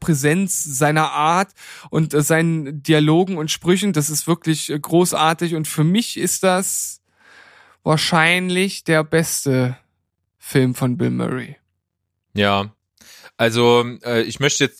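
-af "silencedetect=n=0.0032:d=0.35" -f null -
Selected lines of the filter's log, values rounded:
silence_start: 9.81
silence_end: 10.41 | silence_duration: 0.60
silence_start: 11.57
silence_end: 12.35 | silence_duration: 0.78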